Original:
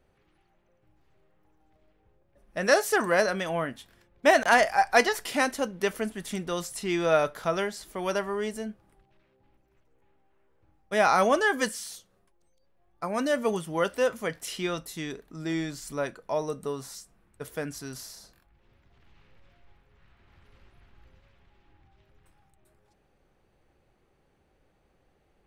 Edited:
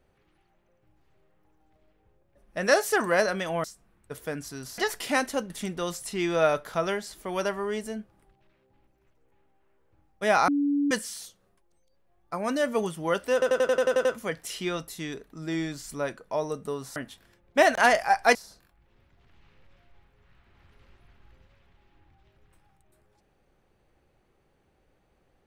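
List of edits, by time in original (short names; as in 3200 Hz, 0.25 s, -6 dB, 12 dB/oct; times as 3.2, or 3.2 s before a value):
3.64–5.03 swap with 16.94–18.08
5.75–6.2 cut
11.18–11.61 bleep 286 Hz -21.5 dBFS
14.03 stutter 0.09 s, 9 plays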